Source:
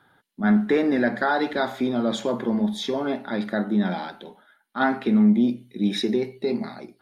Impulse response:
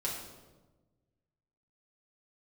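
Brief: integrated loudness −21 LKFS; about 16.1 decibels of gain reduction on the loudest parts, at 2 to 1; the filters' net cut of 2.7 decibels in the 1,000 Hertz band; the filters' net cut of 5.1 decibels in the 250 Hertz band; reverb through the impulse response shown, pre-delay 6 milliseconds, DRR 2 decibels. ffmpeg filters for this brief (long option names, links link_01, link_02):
-filter_complex "[0:a]equalizer=frequency=250:width_type=o:gain=-6,equalizer=frequency=1000:width_type=o:gain=-3.5,acompressor=threshold=-50dB:ratio=2,asplit=2[link_01][link_02];[1:a]atrim=start_sample=2205,adelay=6[link_03];[link_02][link_03]afir=irnorm=-1:irlink=0,volume=-5.5dB[link_04];[link_01][link_04]amix=inputs=2:normalize=0,volume=18.5dB"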